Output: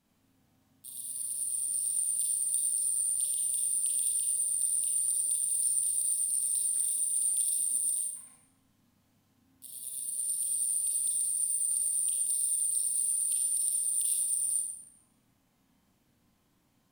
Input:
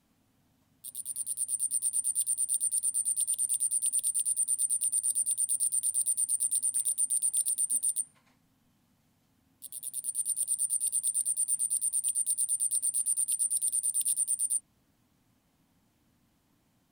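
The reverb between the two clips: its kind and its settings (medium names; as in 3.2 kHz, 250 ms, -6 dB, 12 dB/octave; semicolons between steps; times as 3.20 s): Schroeder reverb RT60 0.69 s, combs from 30 ms, DRR -2 dB; trim -4 dB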